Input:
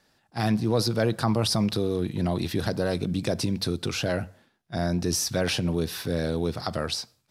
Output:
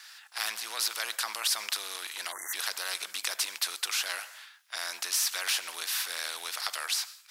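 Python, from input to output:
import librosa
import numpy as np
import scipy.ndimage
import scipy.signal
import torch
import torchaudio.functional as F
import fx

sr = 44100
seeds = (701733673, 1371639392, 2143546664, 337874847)

y = fx.spec_erase(x, sr, start_s=2.32, length_s=0.22, low_hz=2100.0, high_hz=5800.0)
y = scipy.signal.sosfilt(scipy.signal.butter(4, 1300.0, 'highpass', fs=sr, output='sos'), y)
y = fx.spectral_comp(y, sr, ratio=2.0)
y = y * librosa.db_to_amplitude(2.0)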